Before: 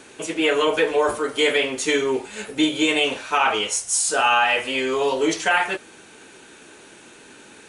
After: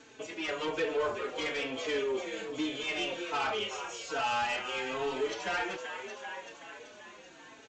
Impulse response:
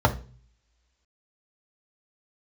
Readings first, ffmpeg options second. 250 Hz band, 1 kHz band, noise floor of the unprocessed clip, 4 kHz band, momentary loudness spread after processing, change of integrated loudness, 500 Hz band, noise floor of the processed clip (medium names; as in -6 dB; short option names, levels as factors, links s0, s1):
-14.0 dB, -12.0 dB, -47 dBFS, -12.5 dB, 16 LU, -13.0 dB, -12.0 dB, -54 dBFS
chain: -filter_complex "[0:a]asplit=8[s0][s1][s2][s3][s4][s5][s6][s7];[s1]adelay=383,afreqshift=39,volume=0.282[s8];[s2]adelay=766,afreqshift=78,volume=0.17[s9];[s3]adelay=1149,afreqshift=117,volume=0.101[s10];[s4]adelay=1532,afreqshift=156,volume=0.061[s11];[s5]adelay=1915,afreqshift=195,volume=0.0367[s12];[s6]adelay=2298,afreqshift=234,volume=0.0219[s13];[s7]adelay=2681,afreqshift=273,volume=0.0132[s14];[s0][s8][s9][s10][s11][s12][s13][s14]amix=inputs=8:normalize=0,acrossover=split=4300[s15][s16];[s16]acompressor=threshold=0.0112:ratio=4:attack=1:release=60[s17];[s15][s17]amix=inputs=2:normalize=0,aresample=16000,asoftclip=type=tanh:threshold=0.126,aresample=44100,asplit=2[s18][s19];[s19]adelay=4,afreqshift=-1.2[s20];[s18][s20]amix=inputs=2:normalize=1,volume=0.473"